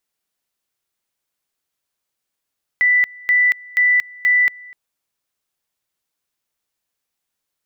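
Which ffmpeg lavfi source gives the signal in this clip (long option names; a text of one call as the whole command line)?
ffmpeg -f lavfi -i "aevalsrc='pow(10,(-11-24.5*gte(mod(t,0.48),0.23))/20)*sin(2*PI*1980*t)':duration=1.92:sample_rate=44100" out.wav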